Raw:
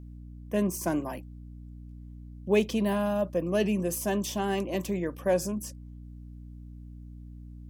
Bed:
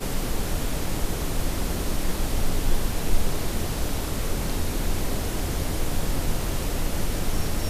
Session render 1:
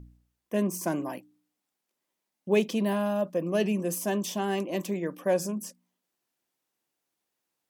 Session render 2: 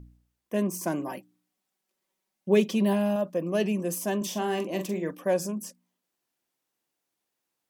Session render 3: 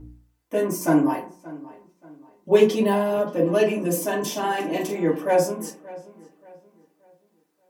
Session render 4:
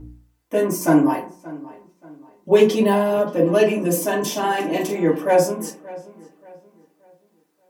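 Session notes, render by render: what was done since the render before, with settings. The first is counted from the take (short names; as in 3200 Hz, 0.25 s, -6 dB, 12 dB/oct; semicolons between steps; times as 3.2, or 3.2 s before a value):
de-hum 60 Hz, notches 5
1.07–3.16 comb 5.3 ms, depth 61%; 4.17–5.11 doubler 43 ms -8 dB
darkening echo 0.579 s, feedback 36%, low-pass 3400 Hz, level -19 dB; FDN reverb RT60 0.43 s, low-frequency decay 0.75×, high-frequency decay 0.4×, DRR -7 dB
gain +3.5 dB; limiter -3 dBFS, peak gain reduction 2 dB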